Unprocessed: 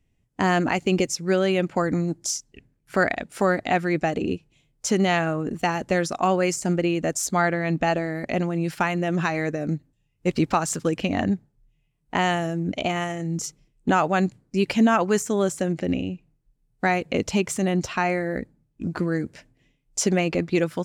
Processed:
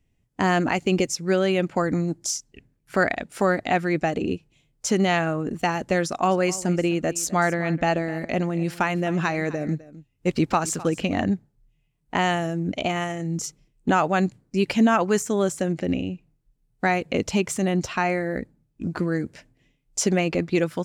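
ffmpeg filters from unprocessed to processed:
-filter_complex "[0:a]asettb=1/sr,asplit=3[a][b][c];[a]atrim=end=6.034[d];[b]atrim=start=6.03:end=11.22,asetpts=PTS-STARTPTS,afade=t=in:d=0.004:c=qsin,afade=t=out:st=5.186:d=0.004:c=qsin,aecho=1:1:257:0.126,atrim=end_sample=228879[e];[c]atrim=start=11.216[f];[d][e]acrossfade=d=0.004:c1=hsin:c2=qsin[g];[g][f]acrossfade=d=0.004:c1=qsin:c2=hsin"

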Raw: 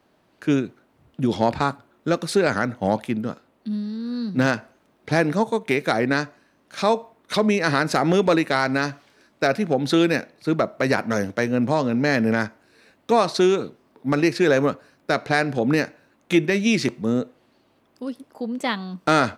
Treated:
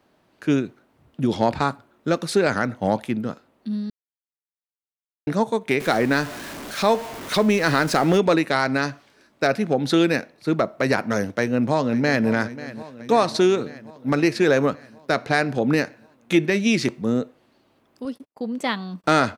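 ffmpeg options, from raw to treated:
-filter_complex "[0:a]asettb=1/sr,asplit=3[a][b][c];[a]atrim=end=5.804[d];[b]atrim=start=5.8:end=8.18,asetpts=PTS-STARTPTS,afade=t=in:d=0.004:c=qsin,afade=t=out:st=2.376:d=0.004:c=qsin,aeval=exprs='val(0)+0.5*0.0335*sgn(val(0))':c=same[e];[c]atrim=start=8.176[f];[d][e]acrossfade=d=0.004:c1=hsin:c2=qsin[g];[g][f]acrossfade=d=0.004:c1=qsin:c2=hsin,asplit=2[h][i];[i]afade=t=in:st=11.36:d=0.01,afade=t=out:st=12.28:d=0.01,aecho=0:1:540|1080|1620|2160|2700|3240|3780|4320:0.16788|0.117516|0.0822614|0.057583|0.0403081|0.0282157|0.019751|0.0138257[j];[h][j]amix=inputs=2:normalize=0,asettb=1/sr,asplit=3[k][l][m];[k]atrim=end=18.054[n];[l]atrim=start=18.05:end=19.04,asetpts=PTS-STARTPTS,afade=t=in:d=0.004:c=qsin,afade=t=out:st=0.986:d=0.004:c=qsin,agate=range=-41dB:threshold=-45dB:ratio=16:release=100:detection=peak[o];[m]atrim=start=19.036[p];[n][o]acrossfade=d=0.004:c1=hsin:c2=qsin[q];[q][p]acrossfade=d=0.004:c1=qsin:c2=hsin,asplit=3[r][s][t];[r]atrim=end=3.9,asetpts=PTS-STARTPTS,afade=t=out:st=3.896:d=0.004:c=hsin[u];[s]atrim=start=3.9:end=5.27,asetpts=PTS-STARTPTS,volume=0[v];[t]atrim=start=5.27,asetpts=PTS-STARTPTS,afade=t=in:d=0.004:c=hsin[w];[u][v][w]concat=n=3:v=0:a=1"

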